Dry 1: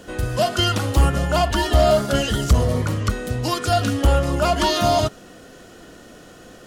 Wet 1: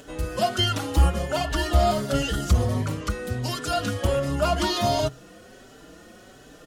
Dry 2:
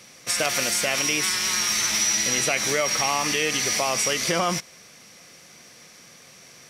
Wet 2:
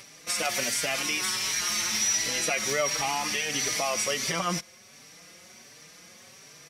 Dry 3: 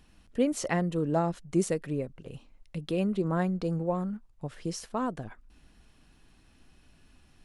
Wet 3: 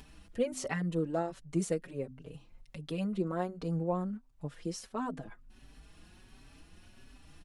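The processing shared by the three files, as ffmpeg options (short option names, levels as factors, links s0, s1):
-filter_complex "[0:a]bandreject=f=128.4:t=h:w=4,bandreject=f=256.8:t=h:w=4,acompressor=mode=upward:threshold=0.01:ratio=2.5,asplit=2[s0][s1];[s1]adelay=4.7,afreqshift=1.4[s2];[s0][s2]amix=inputs=2:normalize=1,volume=0.841"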